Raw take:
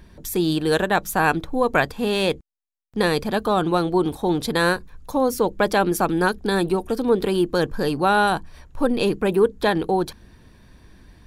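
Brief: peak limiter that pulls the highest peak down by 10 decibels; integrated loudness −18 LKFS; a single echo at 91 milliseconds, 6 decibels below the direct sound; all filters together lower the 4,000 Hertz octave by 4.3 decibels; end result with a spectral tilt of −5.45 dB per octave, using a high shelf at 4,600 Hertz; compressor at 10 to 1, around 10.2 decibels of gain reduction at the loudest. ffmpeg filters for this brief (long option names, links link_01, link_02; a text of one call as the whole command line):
ffmpeg -i in.wav -af "equalizer=frequency=4000:width_type=o:gain=-3.5,highshelf=frequency=4600:gain=-3.5,acompressor=threshold=-23dB:ratio=10,alimiter=limit=-22dB:level=0:latency=1,aecho=1:1:91:0.501,volume=13.5dB" out.wav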